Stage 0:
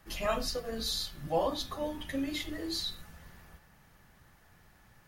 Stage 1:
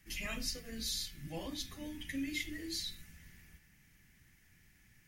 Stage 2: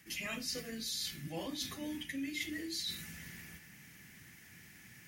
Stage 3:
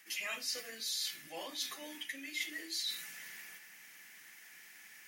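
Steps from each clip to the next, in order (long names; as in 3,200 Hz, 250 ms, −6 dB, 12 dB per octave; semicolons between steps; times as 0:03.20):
drawn EQ curve 300 Hz 0 dB, 560 Hz −14 dB, 1,200 Hz −13 dB, 2,100 Hz +7 dB, 4,000 Hz −2 dB, 5,800 Hz +5 dB, 12,000 Hz +3 dB; level −4.5 dB
high-pass filter 130 Hz 12 dB per octave; reversed playback; downward compressor 4 to 1, threshold −50 dBFS, peak gain reduction 13.5 dB; reversed playback; level +11 dB
high-pass filter 620 Hz 12 dB per octave; in parallel at −11 dB: soft clipping −36 dBFS, distortion −14 dB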